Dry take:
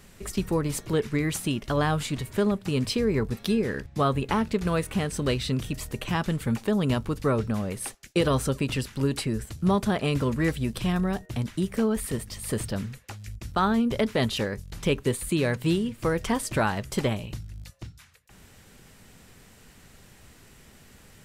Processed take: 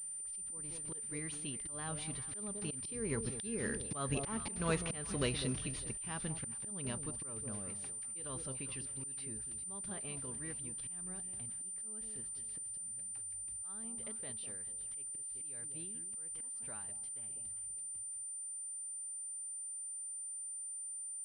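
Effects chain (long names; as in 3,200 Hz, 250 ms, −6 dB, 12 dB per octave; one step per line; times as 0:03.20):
source passing by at 0:04.42, 5 m/s, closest 4.2 metres
high-shelf EQ 2,500 Hz +9 dB
delay that swaps between a low-pass and a high-pass 201 ms, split 820 Hz, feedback 52%, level −10 dB
volume swells 253 ms
switching amplifier with a slow clock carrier 9,100 Hz
level −7 dB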